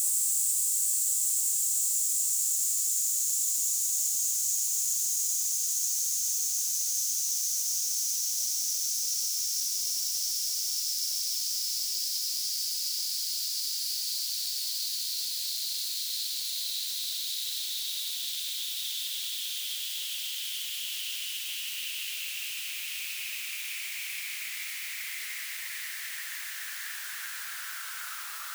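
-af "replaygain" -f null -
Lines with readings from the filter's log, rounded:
track_gain = +14.5 dB
track_peak = 0.129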